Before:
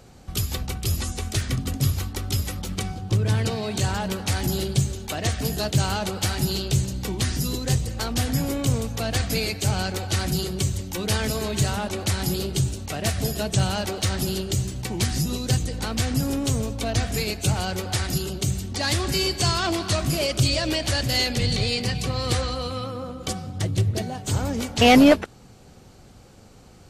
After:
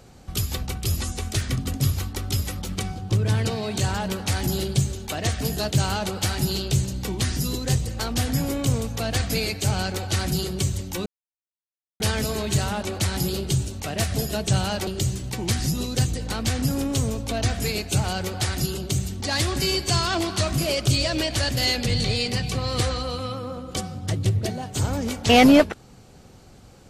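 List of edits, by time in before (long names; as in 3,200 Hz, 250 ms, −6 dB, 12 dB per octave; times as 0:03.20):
0:11.06: splice in silence 0.94 s
0:13.93–0:14.39: remove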